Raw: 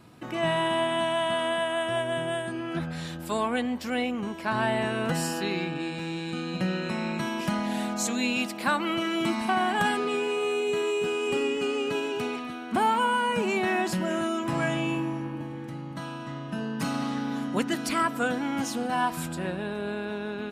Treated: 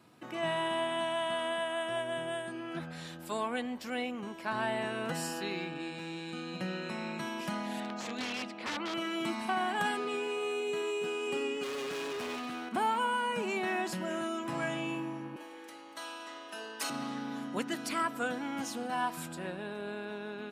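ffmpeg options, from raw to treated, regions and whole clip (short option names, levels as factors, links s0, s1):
-filter_complex "[0:a]asettb=1/sr,asplit=3[s0][s1][s2];[s0]atrim=end=7.804[s3];[s1]atrim=start=7.8:end=8.94,asetpts=PTS-STARTPTS,afade=t=in:d=0.004:c=qsin,afade=t=out:st=1.136:d=0.004:c=qsin,bandreject=f=60:t=h:w=6,bandreject=f=120:t=h:w=6,bandreject=f=180:t=h:w=6,bandreject=f=240:t=h:w=6,aeval=exprs='(mod(11.2*val(0)+1,2)-1)/11.2':c=same,lowpass=3900[s4];[s2]atrim=start=8.936[s5];[s3][s4]acrossfade=d=0.004:c1=hsin:c2=qsin[s6];[s6][s5]acrossfade=d=0.004:c1=qsin:c2=hsin,asettb=1/sr,asplit=3[s7][s8][s9];[s7]atrim=end=11.634[s10];[s8]atrim=start=11.63:end=12.69,asetpts=PTS-STARTPTS,afade=t=in:d=0.004:c=qsin,afade=t=out:st=1.056:d=0.004:c=qsin,acontrast=90,asoftclip=type=hard:threshold=0.0355[s11];[s9]atrim=start=12.686[s12];[s10][s11]acrossfade=d=0.004:c1=hsin:c2=qsin[s13];[s13][s12]acrossfade=d=0.004:c1=qsin:c2=hsin,asettb=1/sr,asplit=3[s14][s15][s16];[s14]atrim=end=15.364[s17];[s15]atrim=start=15.36:end=16.9,asetpts=PTS-STARTPTS,afade=t=in:d=0.004:c=qsin,afade=t=out:st=1.536:d=0.004:c=qsin,highpass=f=350:w=0.5412,highpass=f=350:w=1.3066,highshelf=f=2500:g=10.5[s18];[s16]atrim=start=16.896[s19];[s17][s18]acrossfade=d=0.004:c1=hsin:c2=qsin[s20];[s20][s19]acrossfade=d=0.004:c1=qsin:c2=hsin,highpass=73,lowshelf=f=130:g=-11.5,volume=0.501"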